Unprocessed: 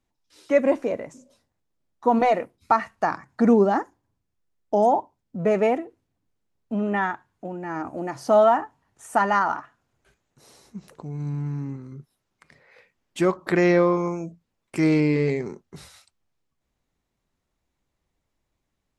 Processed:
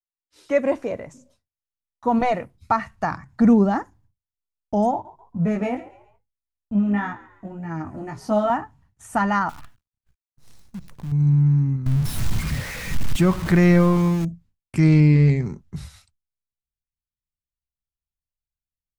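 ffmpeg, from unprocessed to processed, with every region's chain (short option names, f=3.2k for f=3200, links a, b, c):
-filter_complex "[0:a]asettb=1/sr,asplit=3[a][b][c];[a]atrim=end=4.914[d];[b]atrim=start=4.91:end=8.5,asetpts=PTS-STARTPTS,afade=t=in:d=0.004:c=qsin,afade=t=out:st=3.586:d=0.004:c=qsin,flanger=delay=18:depth=2.2:speed=1.8,asplit=4[e][f][g][h];[f]adelay=138,afreqshift=55,volume=-18dB[i];[g]adelay=276,afreqshift=110,volume=-26.6dB[j];[h]adelay=414,afreqshift=165,volume=-35.3dB[k];[e][i][j][k]amix=inputs=4:normalize=0,atrim=end_sample=158319[l];[c]atrim=start=8.496[m];[d][l]acrossfade=d=0.004:c1=hsin:c2=qsin[n];[n][m]acrossfade=d=0.004:c1=qsin:c2=hsin,asettb=1/sr,asplit=3[o][p][q];[o]atrim=end=9.494[r];[p]atrim=start=9.49:end=11.12,asetpts=PTS-STARTPTS,afade=t=in:d=0.004:c=qsin,afade=t=out:st=1.626:d=0.004:c=qsin,acompressor=threshold=-37dB:ratio=16:attack=3.2:release=140:knee=1:detection=peak,acrusher=bits=8:dc=4:mix=0:aa=0.000001[s];[q]atrim=start=11.116[t];[r][s]acrossfade=d=0.004:c1=hsin:c2=qsin[u];[u][t]acrossfade=d=0.004:c1=qsin:c2=hsin,asettb=1/sr,asplit=3[v][w][x];[v]atrim=end=11.864[y];[w]atrim=start=11.86:end=14.25,asetpts=PTS-STARTPTS,afade=t=in:d=0.004:c=qsin,afade=t=out:st=2.386:d=0.004:c=qsin,aeval=exprs='val(0)+0.5*0.0355*sgn(val(0))':c=same,acompressor=mode=upward:threshold=-31dB:ratio=2.5:attack=3.2:release=140:knee=2.83:detection=peak[z];[x]atrim=start=14.246[aa];[y][z]acrossfade=d=0.004:c1=hsin:c2=qsin[ab];[ab][aa]acrossfade=d=0.004:c1=qsin:c2=hsin,agate=range=-33dB:threshold=-53dB:ratio=3:detection=peak,asubboost=boost=10.5:cutoff=130"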